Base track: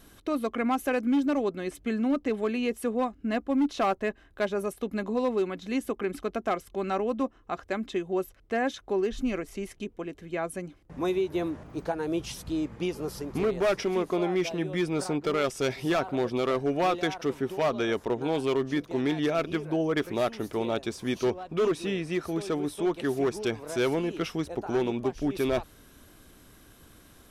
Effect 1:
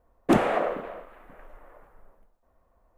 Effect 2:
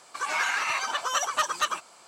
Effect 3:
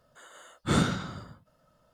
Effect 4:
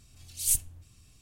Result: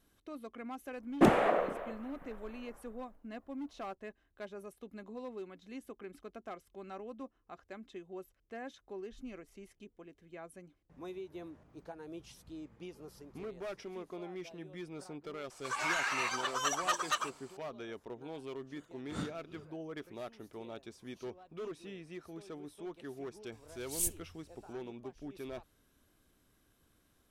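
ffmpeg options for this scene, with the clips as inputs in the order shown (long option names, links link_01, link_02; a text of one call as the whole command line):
ffmpeg -i bed.wav -i cue0.wav -i cue1.wav -i cue2.wav -i cue3.wav -filter_complex "[0:a]volume=-17dB[link_01];[3:a]aeval=exprs='val(0)*pow(10,-24*(0.5-0.5*cos(2*PI*2.5*n/s))/20)':channel_layout=same[link_02];[1:a]atrim=end=2.97,asetpts=PTS-STARTPTS,volume=-3.5dB,afade=type=in:duration=0.004:curve=hsin,afade=type=out:start_time=2.966:duration=0.004:curve=hsin,adelay=920[link_03];[2:a]atrim=end=2.07,asetpts=PTS-STARTPTS,volume=-6.5dB,afade=type=in:duration=0.004:curve=hsin,afade=type=out:start_time=2.066:duration=0.004:curve=hsin,adelay=15500[link_04];[link_02]atrim=end=1.93,asetpts=PTS-STARTPTS,volume=-14.5dB,afade=type=in:duration=0.004:curve=hsin,afade=type=out:start_time=1.926:duration=0.004:curve=hsin,adelay=18410[link_05];[4:a]atrim=end=1.21,asetpts=PTS-STARTPTS,volume=-8dB,afade=type=in:duration=0.004:curve=hsin,afade=type=out:start_time=1.206:duration=0.004:curve=hsin,adelay=23520[link_06];[link_01][link_03][link_04][link_05][link_06]amix=inputs=5:normalize=0" out.wav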